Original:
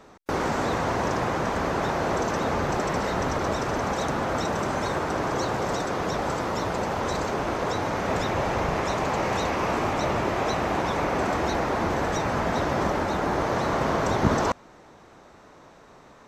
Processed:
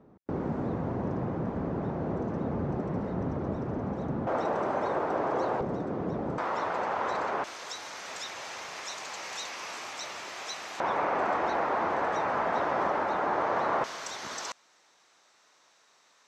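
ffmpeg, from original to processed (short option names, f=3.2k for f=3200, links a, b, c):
-af "asetnsamples=n=441:p=0,asendcmd='4.27 bandpass f 610;5.61 bandpass f 220;6.38 bandpass f 1100;7.44 bandpass f 5900;10.8 bandpass f 1000;13.84 bandpass f 5800',bandpass=f=170:t=q:w=0.83:csg=0"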